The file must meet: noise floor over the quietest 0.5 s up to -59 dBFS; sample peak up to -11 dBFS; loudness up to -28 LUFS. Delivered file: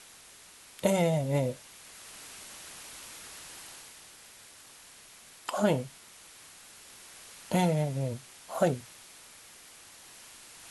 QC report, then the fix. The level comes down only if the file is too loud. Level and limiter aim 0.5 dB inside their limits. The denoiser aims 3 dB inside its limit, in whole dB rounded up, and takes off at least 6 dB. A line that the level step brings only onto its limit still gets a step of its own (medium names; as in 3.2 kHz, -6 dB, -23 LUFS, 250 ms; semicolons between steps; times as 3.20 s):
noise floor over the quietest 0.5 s -53 dBFS: fail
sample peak -11.5 dBFS: pass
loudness -31.5 LUFS: pass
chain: noise reduction 9 dB, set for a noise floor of -53 dBFS